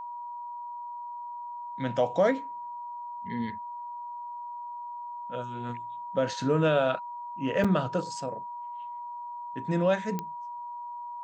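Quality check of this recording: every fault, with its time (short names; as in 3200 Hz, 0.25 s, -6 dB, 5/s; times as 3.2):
tone 960 Hz -36 dBFS
7.64–7.65 gap 5.5 ms
10.19 pop -18 dBFS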